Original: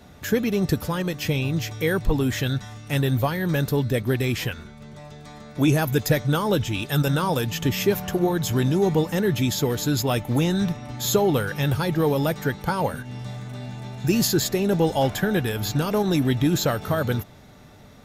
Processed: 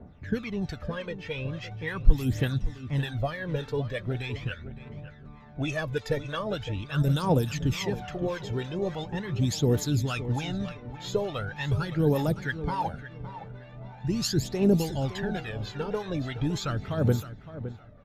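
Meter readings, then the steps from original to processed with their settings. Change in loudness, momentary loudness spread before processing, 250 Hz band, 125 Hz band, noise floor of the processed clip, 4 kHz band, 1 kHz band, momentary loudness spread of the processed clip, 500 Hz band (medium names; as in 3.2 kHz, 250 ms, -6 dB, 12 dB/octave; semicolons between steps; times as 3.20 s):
-6.5 dB, 10 LU, -7.0 dB, -4.5 dB, -48 dBFS, -7.5 dB, -7.0 dB, 14 LU, -7.0 dB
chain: phaser 0.41 Hz, delay 2.3 ms, feedback 67%; harmonic tremolo 3.4 Hz, depth 70%, crossover 720 Hz; bass shelf 64 Hz +4.5 dB; on a send: feedback delay 563 ms, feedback 25%, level -13 dB; on the sum: level-controlled noise filter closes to 1.6 kHz, open at -13.5 dBFS; trim -6 dB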